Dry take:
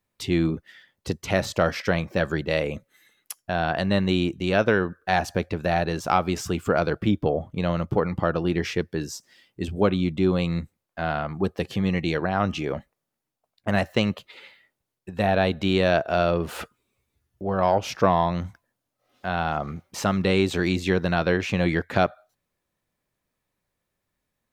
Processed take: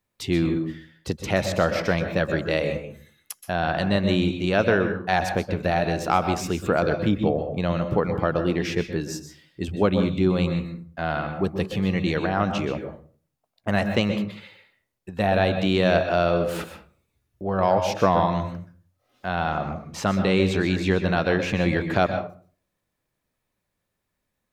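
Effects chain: 19.35–21.13 high shelf 10000 Hz -9 dB; reverb RT60 0.40 s, pre-delay 0.12 s, DRR 7.5 dB

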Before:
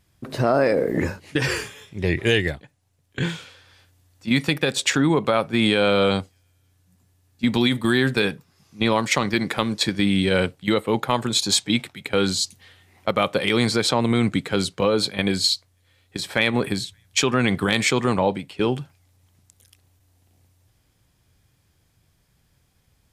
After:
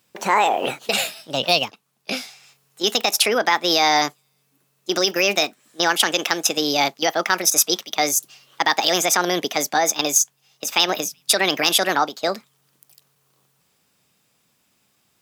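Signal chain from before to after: HPF 510 Hz 6 dB/oct; wide varispeed 1.52×; gain +4.5 dB

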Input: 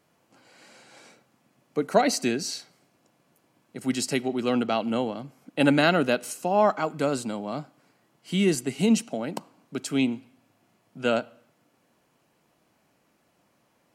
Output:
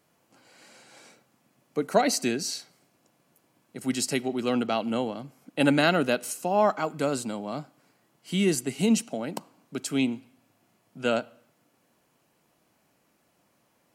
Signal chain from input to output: high shelf 7600 Hz +6 dB; gain -1.5 dB

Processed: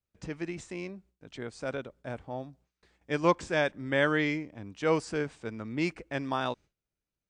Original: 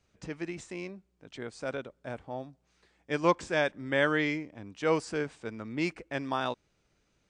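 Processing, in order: gate with hold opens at -58 dBFS; low shelf 150 Hz +5 dB

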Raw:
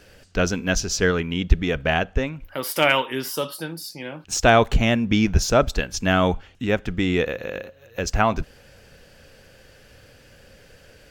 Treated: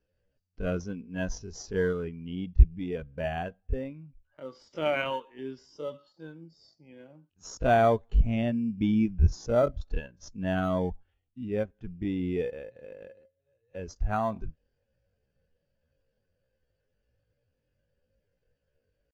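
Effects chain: downsampling 16000 Hz; tempo 0.58×; in parallel at -9 dB: sample-and-hold 17×; on the sum: spectral expander 1.5:1; gain -5 dB

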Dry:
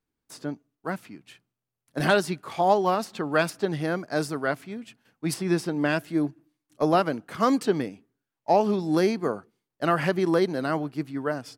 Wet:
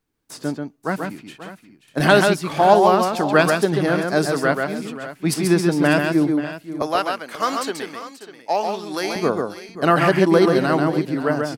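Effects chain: 6.82–9.16 HPF 1500 Hz 6 dB/oct; tapped delay 0.136/0.534/0.595 s -4.5/-14.5/-15 dB; gain +7 dB

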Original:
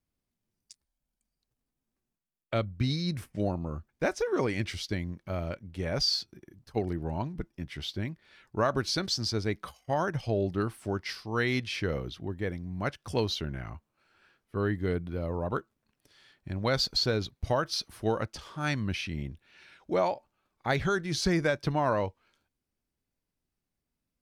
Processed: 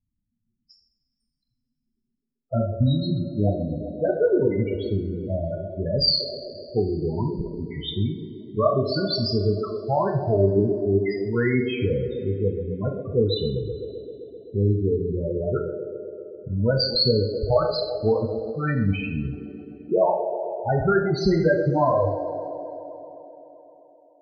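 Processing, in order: band-limited delay 0.13 s, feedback 80%, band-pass 470 Hz, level -7 dB; loudest bins only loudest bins 8; two-slope reverb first 0.58 s, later 2.5 s, from -18 dB, DRR 1.5 dB; gain +7 dB

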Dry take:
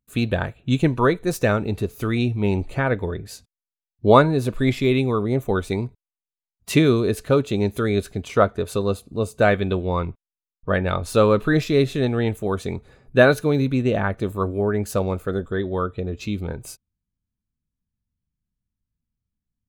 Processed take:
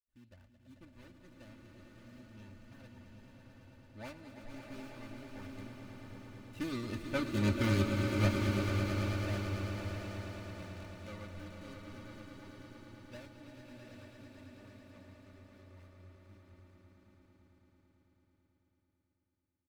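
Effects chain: median filter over 41 samples; Doppler pass-by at 7.6, 8 m/s, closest 1.7 m; bell 410 Hz -13.5 dB 2 oct; comb 3.4 ms, depth 84%; on a send: swelling echo 0.11 s, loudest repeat 5, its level -10 dB; on the sum: bloom reverb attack 0.81 s, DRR 4 dB

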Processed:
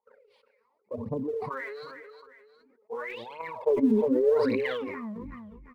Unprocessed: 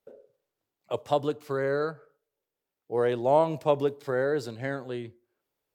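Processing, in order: tape stop at the end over 1.12 s; high shelf 2700 Hz -11 dB; harmonic-percussive split harmonic +8 dB; ripple EQ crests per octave 0.91, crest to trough 15 dB; transient shaper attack +9 dB, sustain -5 dB; compressor, threshold -13 dBFS, peak gain reduction 10 dB; wah 0.69 Hz 210–3200 Hz, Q 8.2; phaser 0.88 Hz, delay 4.9 ms, feedback 76%; feedback echo 0.36 s, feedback 30%, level -23.5 dB; sustainer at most 25 dB/s

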